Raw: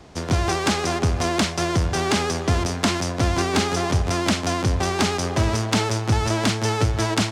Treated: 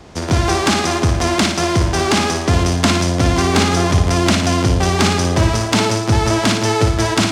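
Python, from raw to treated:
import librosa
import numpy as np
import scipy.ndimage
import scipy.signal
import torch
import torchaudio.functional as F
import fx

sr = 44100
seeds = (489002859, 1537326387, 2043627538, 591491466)

y = fx.room_flutter(x, sr, wall_m=9.8, rt60_s=0.59)
y = y * librosa.db_to_amplitude(5.0)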